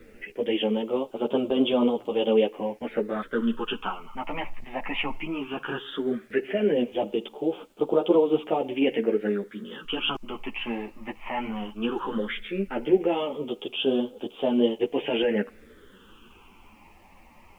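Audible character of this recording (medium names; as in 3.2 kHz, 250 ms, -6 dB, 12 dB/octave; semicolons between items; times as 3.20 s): phasing stages 8, 0.16 Hz, lowest notch 440–1800 Hz; a quantiser's noise floor 12-bit, dither none; a shimmering, thickened sound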